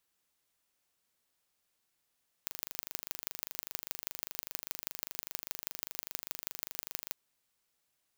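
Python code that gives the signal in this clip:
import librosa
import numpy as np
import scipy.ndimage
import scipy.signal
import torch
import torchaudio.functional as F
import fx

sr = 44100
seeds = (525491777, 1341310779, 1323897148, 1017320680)

y = fx.impulse_train(sr, length_s=4.68, per_s=25.0, accent_every=4, level_db=-7.5)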